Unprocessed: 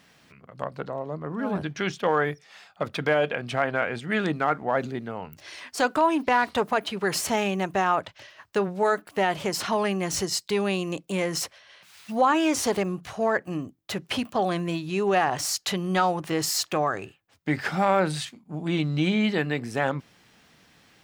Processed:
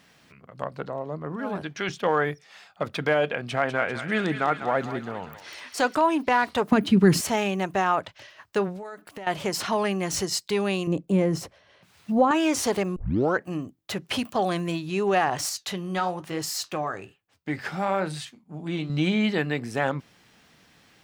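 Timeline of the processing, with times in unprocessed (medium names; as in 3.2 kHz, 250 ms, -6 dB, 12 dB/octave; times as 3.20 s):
1.36–1.89 s: bass shelf 220 Hz -8.5 dB
3.35–5.95 s: thinning echo 197 ms, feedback 65%, high-pass 1.1 kHz, level -8 dB
6.72–7.21 s: resonant low shelf 390 Hz +14 dB, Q 1.5
8.76–9.27 s: compression 8:1, threshold -35 dBFS
10.87–12.31 s: tilt shelf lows +9.5 dB, about 710 Hz
12.96 s: tape start 0.44 s
14.13–14.72 s: treble shelf 4.8 kHz +4.5 dB
15.49–18.90 s: flange 1.1 Hz, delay 6.5 ms, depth 6.4 ms, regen -68%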